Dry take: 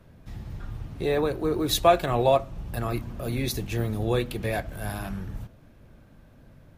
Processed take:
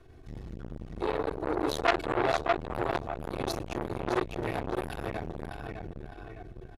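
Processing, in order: LPF 9600 Hz 12 dB/oct; bell 370 Hz +5.5 dB 0.32 oct; notches 50/100/150/200/250/300 Hz; comb 2.7 ms, depth 96%; in parallel at -2 dB: compressor, threshold -26 dBFS, peak gain reduction 16.5 dB; on the sum: darkening echo 0.61 s, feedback 43%, low-pass 4600 Hz, level -3.5 dB; core saturation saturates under 2100 Hz; gain -7 dB

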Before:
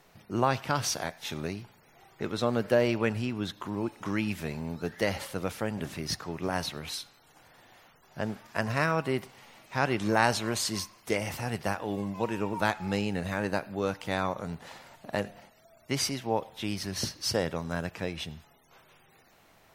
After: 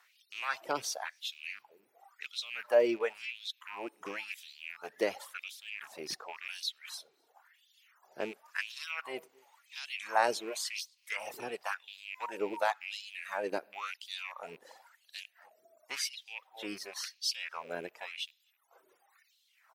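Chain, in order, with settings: rattling part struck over -36 dBFS, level -26 dBFS; echo 0.262 s -23 dB; LFO high-pass sine 0.94 Hz 370–3700 Hz; reverb removal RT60 1.7 s; gain -6 dB

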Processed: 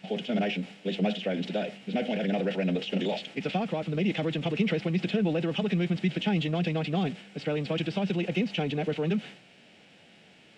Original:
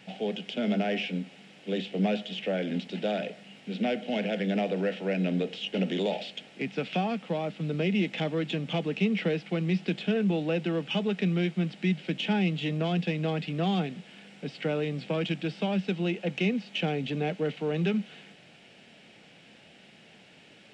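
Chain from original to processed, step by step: transient shaper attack +2 dB, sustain +7 dB; time stretch by phase-locked vocoder 0.51×

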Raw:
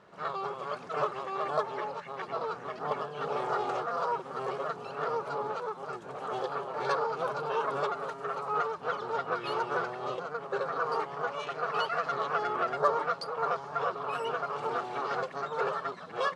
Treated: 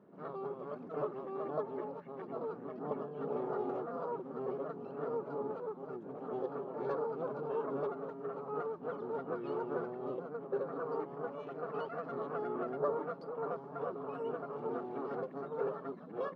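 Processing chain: band-pass 260 Hz, Q 2.3; gain +6.5 dB

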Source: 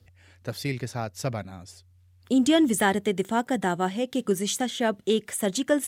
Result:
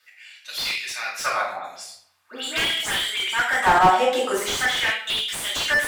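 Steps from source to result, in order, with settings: LFO high-pass sine 0.43 Hz 750–3300 Hz; 1.52–3.33 dispersion highs, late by 0.126 s, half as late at 2200 Hz; reverb RT60 0.65 s, pre-delay 3 ms, DRR -8 dB; slew limiter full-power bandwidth 250 Hz

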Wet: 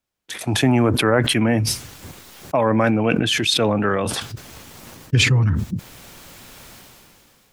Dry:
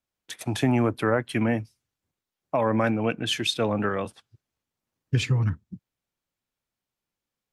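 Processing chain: sustainer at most 21 dB/s; gain +5 dB

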